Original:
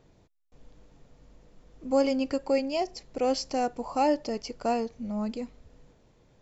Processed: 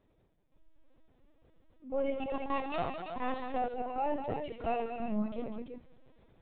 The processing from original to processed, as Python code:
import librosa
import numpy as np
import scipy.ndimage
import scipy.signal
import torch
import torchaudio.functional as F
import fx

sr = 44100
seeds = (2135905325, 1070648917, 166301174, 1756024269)

p1 = fx.lower_of_two(x, sr, delay_ms=1.1, at=(2.13, 3.33))
p2 = fx.tilt_eq(p1, sr, slope=2.0, at=(4.34, 4.84))
p3 = fx.rider(p2, sr, range_db=4, speed_s=0.5)
p4 = p3 + fx.echo_multitap(p3, sr, ms=(48, 77, 83, 199, 207, 329), db=(-13.0, -9.0, -13.5, -10.0, -11.5, -7.5), dry=0)
p5 = fx.lpc_vocoder(p4, sr, seeds[0], excitation='pitch_kept', order=16)
y = p5 * 10.0 ** (-6.5 / 20.0)